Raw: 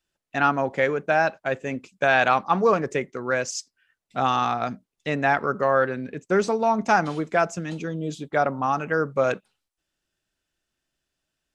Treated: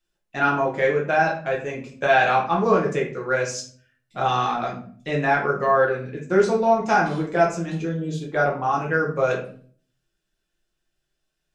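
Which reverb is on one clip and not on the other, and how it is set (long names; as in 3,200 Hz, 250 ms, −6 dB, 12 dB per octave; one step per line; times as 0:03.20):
rectangular room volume 44 cubic metres, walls mixed, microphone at 0.88 metres
level −4 dB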